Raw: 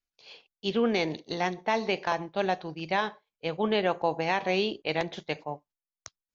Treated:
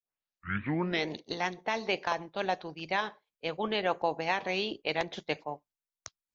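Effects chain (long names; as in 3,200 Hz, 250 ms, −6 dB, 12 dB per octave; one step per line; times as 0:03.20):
turntable start at the beginning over 1.09 s
harmonic and percussive parts rebalanced harmonic −7 dB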